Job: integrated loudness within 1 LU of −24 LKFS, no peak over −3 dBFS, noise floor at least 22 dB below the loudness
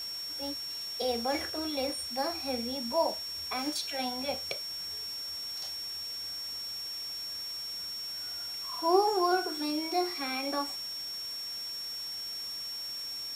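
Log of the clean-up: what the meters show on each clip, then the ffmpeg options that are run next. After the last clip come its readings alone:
interfering tone 5,500 Hz; level of the tone −36 dBFS; background noise floor −39 dBFS; target noise floor −55 dBFS; integrated loudness −32.5 LKFS; sample peak −13.0 dBFS; target loudness −24.0 LKFS
→ -af "bandreject=frequency=5500:width=30"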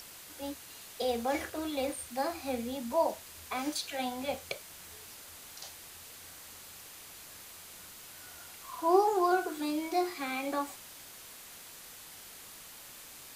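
interfering tone none found; background noise floor −50 dBFS; target noise floor −56 dBFS
→ -af "afftdn=noise_reduction=6:noise_floor=-50"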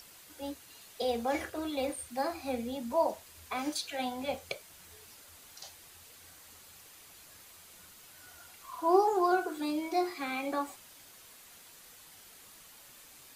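background noise floor −55 dBFS; integrated loudness −33.0 LKFS; sample peak −13.5 dBFS; target loudness −24.0 LKFS
→ -af "volume=9dB"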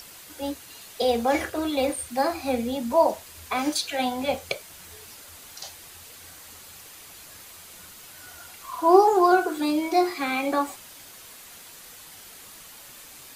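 integrated loudness −24.0 LKFS; sample peak −4.5 dBFS; background noise floor −46 dBFS

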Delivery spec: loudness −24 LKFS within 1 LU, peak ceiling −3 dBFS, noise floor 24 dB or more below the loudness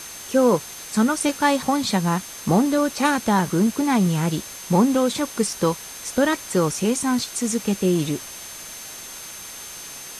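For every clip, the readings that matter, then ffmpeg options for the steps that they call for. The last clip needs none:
interfering tone 6,300 Hz; level of the tone −40 dBFS; background noise floor −37 dBFS; target noise floor −46 dBFS; integrated loudness −21.5 LKFS; sample peak −5.0 dBFS; target loudness −24.0 LKFS
→ -af "bandreject=frequency=6300:width=30"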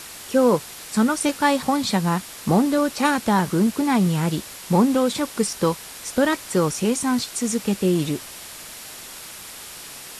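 interfering tone none found; background noise floor −39 dBFS; target noise floor −46 dBFS
→ -af "afftdn=noise_reduction=7:noise_floor=-39"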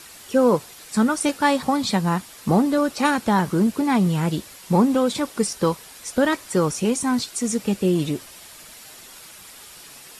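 background noise floor −44 dBFS; target noise floor −46 dBFS
→ -af "afftdn=noise_reduction=6:noise_floor=-44"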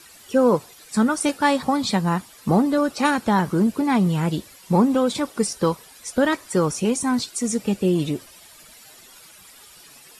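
background noise floor −48 dBFS; integrated loudness −22.0 LKFS; sample peak −5.5 dBFS; target loudness −24.0 LKFS
→ -af "volume=-2dB"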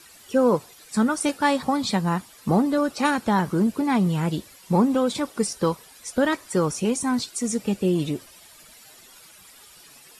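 integrated loudness −24.0 LKFS; sample peak −7.5 dBFS; background noise floor −50 dBFS

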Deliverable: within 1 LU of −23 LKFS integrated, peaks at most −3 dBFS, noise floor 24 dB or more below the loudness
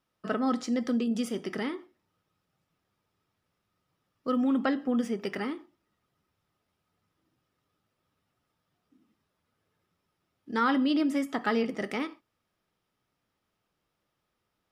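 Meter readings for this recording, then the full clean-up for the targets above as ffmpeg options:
integrated loudness −29.5 LKFS; sample peak −13.0 dBFS; target loudness −23.0 LKFS
→ -af "volume=6.5dB"

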